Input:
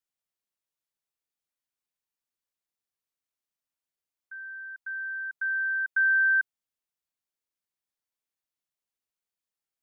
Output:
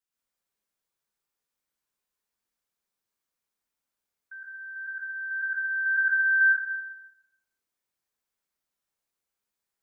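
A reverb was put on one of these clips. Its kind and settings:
dense smooth reverb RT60 0.94 s, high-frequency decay 0.5×, pre-delay 100 ms, DRR −6.5 dB
level −1.5 dB

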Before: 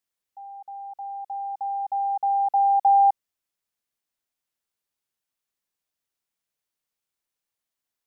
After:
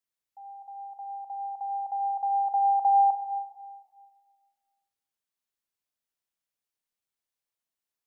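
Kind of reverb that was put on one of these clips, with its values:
four-comb reverb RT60 1.7 s, combs from 30 ms, DRR 6 dB
level −5.5 dB

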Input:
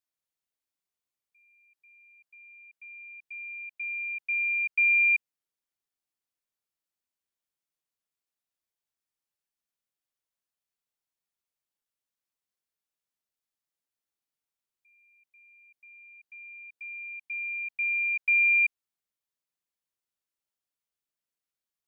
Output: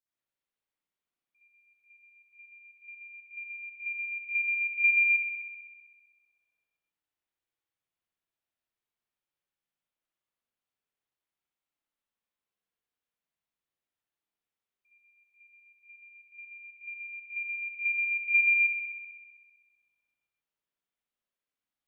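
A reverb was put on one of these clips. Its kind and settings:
spring reverb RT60 1.5 s, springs 56 ms, chirp 45 ms, DRR −9 dB
level −7.5 dB

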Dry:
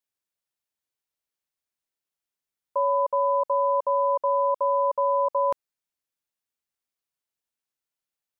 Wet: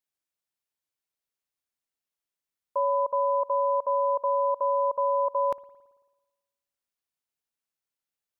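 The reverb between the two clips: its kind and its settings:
spring reverb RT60 1.2 s, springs 55 ms, chirp 80 ms, DRR 19.5 dB
level −2 dB

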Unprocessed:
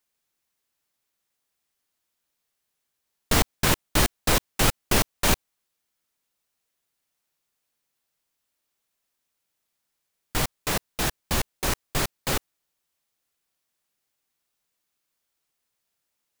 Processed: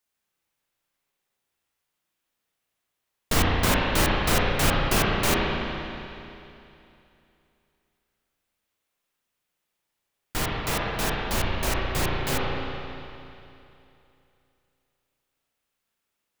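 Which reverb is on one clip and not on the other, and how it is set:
spring reverb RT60 2.8 s, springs 34/56 ms, chirp 80 ms, DRR −4 dB
level −3 dB

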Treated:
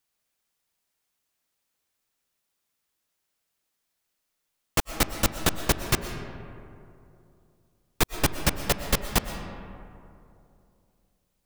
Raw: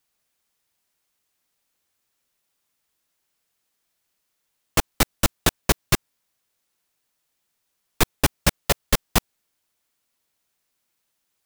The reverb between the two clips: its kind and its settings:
comb and all-pass reverb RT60 2.7 s, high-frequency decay 0.4×, pre-delay 80 ms, DRR 8 dB
level −4 dB

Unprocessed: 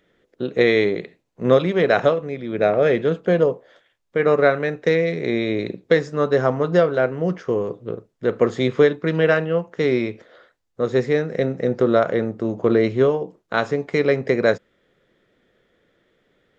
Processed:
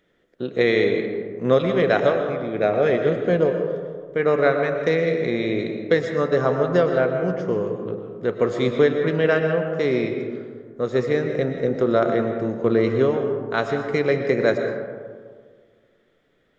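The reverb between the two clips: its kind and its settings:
comb and all-pass reverb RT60 1.8 s, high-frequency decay 0.35×, pre-delay 80 ms, DRR 5 dB
level −2.5 dB

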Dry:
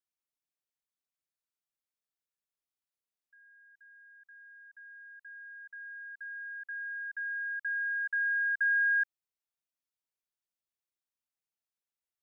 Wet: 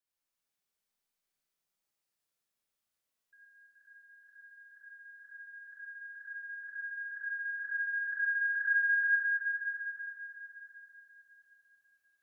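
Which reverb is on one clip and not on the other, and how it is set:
four-comb reverb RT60 4 s, combs from 28 ms, DRR −7 dB
level −1 dB

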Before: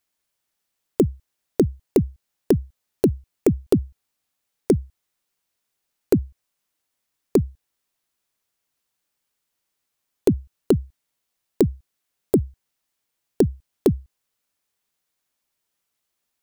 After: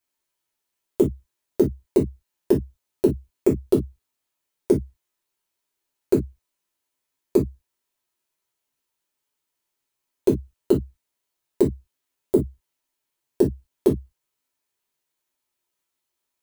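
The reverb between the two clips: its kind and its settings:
reverb whose tail is shaped and stops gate 80 ms falling, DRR −3.5 dB
level −7 dB

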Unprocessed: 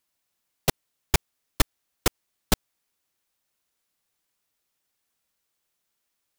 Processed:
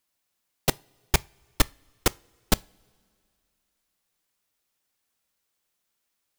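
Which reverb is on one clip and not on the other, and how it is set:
coupled-rooms reverb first 0.29 s, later 2.4 s, from −22 dB, DRR 20 dB

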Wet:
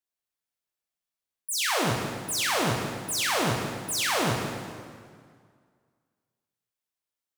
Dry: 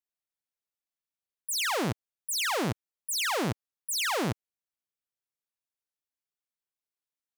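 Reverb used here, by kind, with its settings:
dense smooth reverb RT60 2 s, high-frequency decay 0.8×, DRR −1 dB

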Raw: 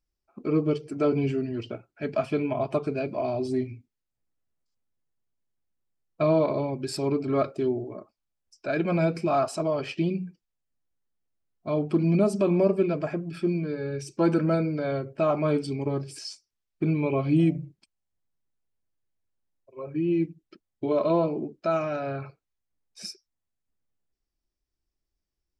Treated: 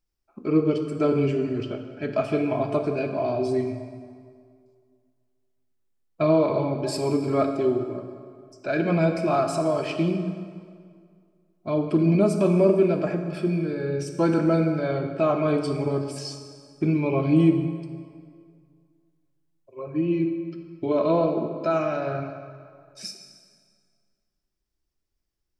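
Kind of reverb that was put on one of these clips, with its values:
dense smooth reverb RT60 2.1 s, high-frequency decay 0.75×, pre-delay 0 ms, DRR 5 dB
level +1.5 dB

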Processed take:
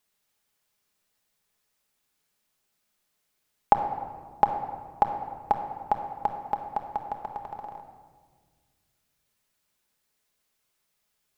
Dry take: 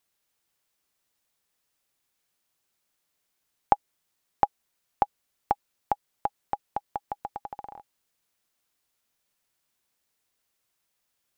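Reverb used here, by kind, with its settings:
rectangular room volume 1,900 cubic metres, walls mixed, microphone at 1.4 metres

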